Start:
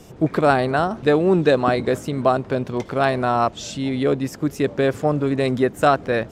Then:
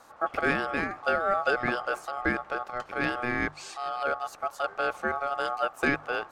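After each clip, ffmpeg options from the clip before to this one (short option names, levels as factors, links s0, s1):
-af "aeval=exprs='val(0)*sin(2*PI*980*n/s)':c=same,bandreject=f=50:t=h:w=6,bandreject=f=100:t=h:w=6,bandreject=f=150:t=h:w=6,volume=0.447"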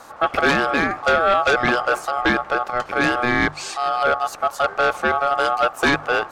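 -af "aeval=exprs='0.282*sin(PI/2*2.51*val(0)/0.282)':c=same"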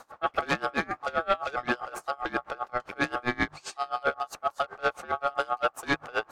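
-af "aeval=exprs='val(0)*pow(10,-26*(0.5-0.5*cos(2*PI*7.6*n/s))/20)':c=same,volume=0.596"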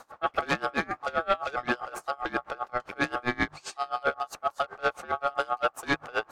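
-af anull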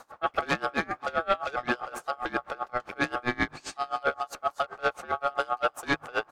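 -af "aecho=1:1:264|528|792|1056|1320:0.0794|0.0477|0.0286|0.0172|0.0103"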